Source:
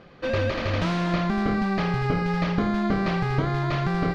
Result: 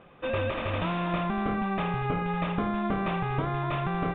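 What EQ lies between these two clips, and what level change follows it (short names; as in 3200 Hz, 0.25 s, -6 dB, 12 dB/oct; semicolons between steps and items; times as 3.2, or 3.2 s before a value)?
rippled Chebyshev low-pass 3700 Hz, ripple 6 dB; 0.0 dB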